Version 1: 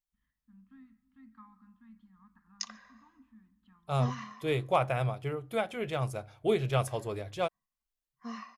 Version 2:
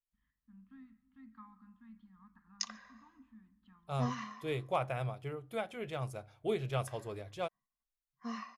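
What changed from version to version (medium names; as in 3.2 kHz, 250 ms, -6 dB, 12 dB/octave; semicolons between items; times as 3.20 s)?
second voice -6.5 dB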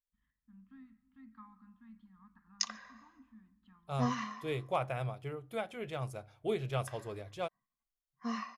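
background +4.0 dB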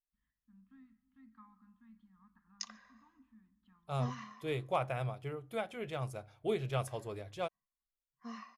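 first voice -4.5 dB; background -9.0 dB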